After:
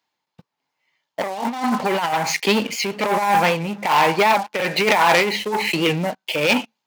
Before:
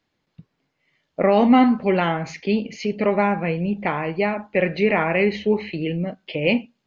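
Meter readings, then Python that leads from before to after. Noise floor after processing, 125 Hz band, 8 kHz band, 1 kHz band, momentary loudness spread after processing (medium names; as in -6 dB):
-81 dBFS, -2.5 dB, no reading, +6.0 dB, 9 LU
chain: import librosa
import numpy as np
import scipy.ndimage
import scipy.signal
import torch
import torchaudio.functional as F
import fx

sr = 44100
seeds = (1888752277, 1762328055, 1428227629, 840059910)

y = fx.peak_eq(x, sr, hz=900.0, db=13.0, octaves=0.51)
y = fx.over_compress(y, sr, threshold_db=-18.0, ratio=-0.5)
y = fx.leveller(y, sr, passes=3)
y = y * (1.0 - 0.54 / 2.0 + 0.54 / 2.0 * np.cos(2.0 * np.pi * 1.2 * (np.arange(len(y)) / sr)))
y = scipy.signal.sosfilt(scipy.signal.butter(2, 77.0, 'highpass', fs=sr, output='sos'), y)
y = fx.tilt_eq(y, sr, slope=3.0)
y = fx.record_warp(y, sr, rpm=78.0, depth_cents=100.0)
y = F.gain(torch.from_numpy(y), -3.0).numpy()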